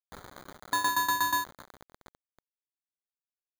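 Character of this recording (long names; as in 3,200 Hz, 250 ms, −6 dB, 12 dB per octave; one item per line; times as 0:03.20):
a quantiser's noise floor 8 bits, dither none
tremolo saw down 8.3 Hz, depth 85%
aliases and images of a low sample rate 2,700 Hz, jitter 0%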